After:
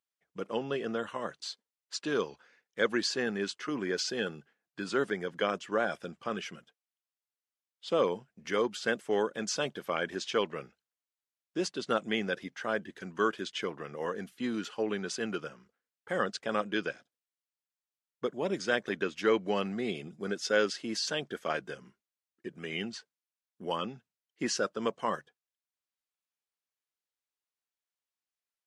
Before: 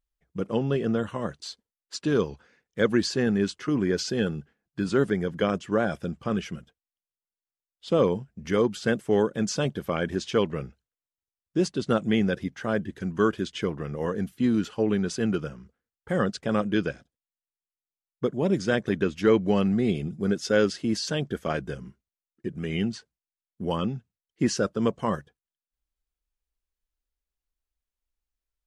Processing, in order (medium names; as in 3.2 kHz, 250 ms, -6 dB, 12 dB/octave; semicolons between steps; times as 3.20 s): frequency weighting A; trim -2 dB